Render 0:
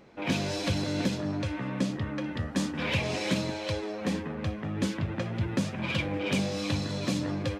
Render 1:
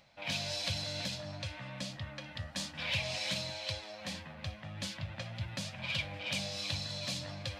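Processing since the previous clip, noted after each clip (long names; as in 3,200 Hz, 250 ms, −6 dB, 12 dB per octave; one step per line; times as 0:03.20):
drawn EQ curve 130 Hz 0 dB, 420 Hz −19 dB, 590 Hz +2 dB, 1,200 Hz −2 dB, 4,400 Hz +11 dB, 6,400 Hz +6 dB
reversed playback
upward compression, threshold −36 dBFS
reversed playback
level −8.5 dB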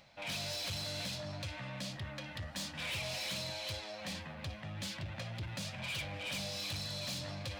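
soft clipping −38.5 dBFS, distortion −9 dB
level +2.5 dB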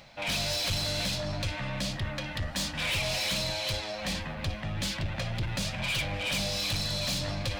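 sub-octave generator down 2 octaves, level −5 dB
level +9 dB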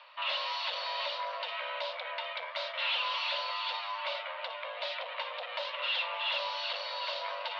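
single-sideband voice off tune +380 Hz 200–3,500 Hz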